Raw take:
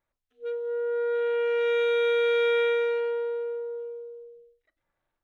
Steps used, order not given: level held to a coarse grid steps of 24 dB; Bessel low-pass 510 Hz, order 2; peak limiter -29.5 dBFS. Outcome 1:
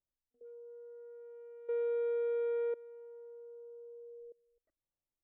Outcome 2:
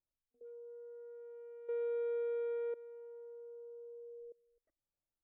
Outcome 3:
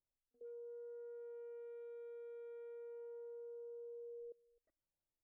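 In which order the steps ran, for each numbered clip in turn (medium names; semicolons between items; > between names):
level held to a coarse grid > Bessel low-pass > peak limiter; level held to a coarse grid > peak limiter > Bessel low-pass; peak limiter > level held to a coarse grid > Bessel low-pass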